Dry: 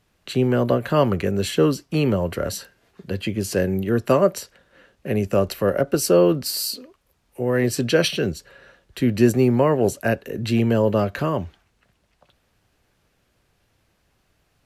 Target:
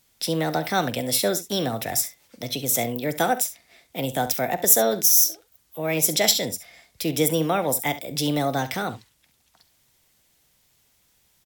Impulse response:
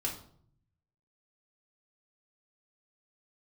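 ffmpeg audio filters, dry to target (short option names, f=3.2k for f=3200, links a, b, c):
-af "asetrate=56448,aresample=44100,aecho=1:1:44|68:0.141|0.178,crystalizer=i=5:c=0,volume=-6.5dB"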